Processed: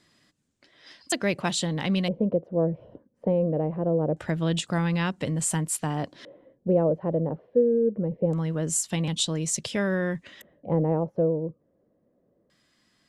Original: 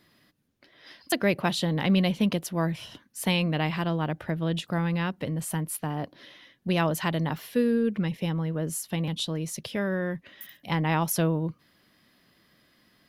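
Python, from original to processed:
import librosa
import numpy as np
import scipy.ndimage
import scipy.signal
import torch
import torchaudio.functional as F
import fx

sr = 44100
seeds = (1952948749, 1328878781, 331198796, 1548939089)

y = fx.filter_lfo_lowpass(x, sr, shape='square', hz=0.24, low_hz=520.0, high_hz=7700.0, q=4.3)
y = fx.rider(y, sr, range_db=4, speed_s=0.5)
y = y * librosa.db_to_amplitude(-1.5)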